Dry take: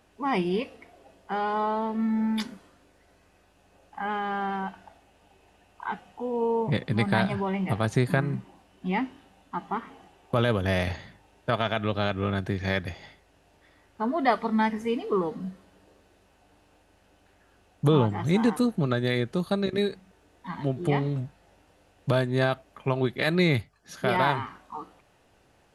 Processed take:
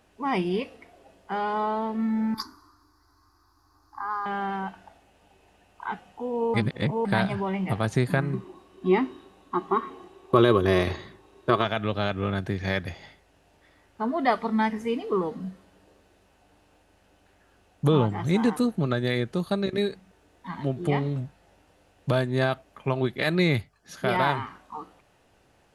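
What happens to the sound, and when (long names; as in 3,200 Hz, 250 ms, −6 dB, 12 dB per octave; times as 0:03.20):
0:02.34–0:04.26: drawn EQ curve 120 Hz 0 dB, 180 Hz −30 dB, 310 Hz +3 dB, 540 Hz −25 dB, 1,100 Hz +10 dB, 2,900 Hz −27 dB, 4,700 Hz +8 dB, 8,500 Hz −11 dB, 12,000 Hz +4 dB
0:06.54–0:07.05: reverse
0:08.33–0:11.65: hollow resonant body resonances 370/1,100/3,800 Hz, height 16 dB, ringing for 50 ms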